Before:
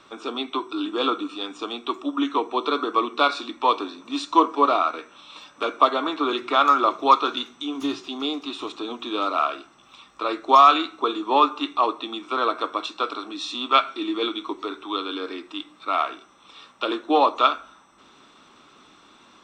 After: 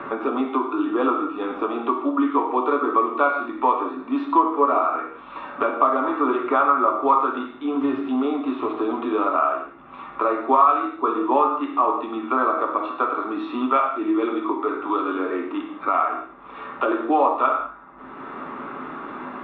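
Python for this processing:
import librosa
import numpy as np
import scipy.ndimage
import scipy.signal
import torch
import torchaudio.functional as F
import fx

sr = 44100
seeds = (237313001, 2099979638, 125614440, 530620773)

y = scipy.signal.sosfilt(scipy.signal.butter(4, 1900.0, 'lowpass', fs=sr, output='sos'), x)
y = fx.rev_gated(y, sr, seeds[0], gate_ms=210, shape='falling', drr_db=1.0)
y = fx.band_squash(y, sr, depth_pct=70)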